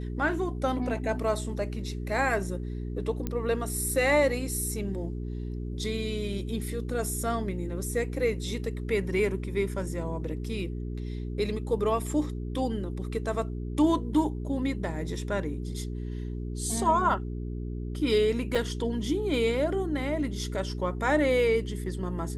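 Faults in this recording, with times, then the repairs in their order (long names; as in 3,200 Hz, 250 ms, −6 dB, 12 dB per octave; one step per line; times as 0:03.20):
mains hum 60 Hz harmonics 7 −34 dBFS
0:03.27: click −17 dBFS
0:18.55: drop-out 4.6 ms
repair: click removal
hum removal 60 Hz, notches 7
repair the gap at 0:18.55, 4.6 ms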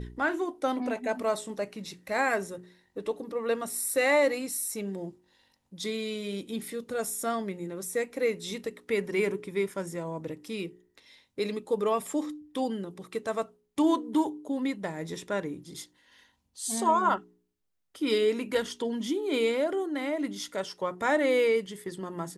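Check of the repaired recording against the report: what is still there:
0:03.27: click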